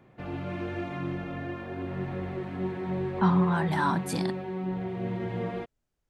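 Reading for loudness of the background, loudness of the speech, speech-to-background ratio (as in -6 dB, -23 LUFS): -34.0 LUFS, -27.5 LUFS, 6.5 dB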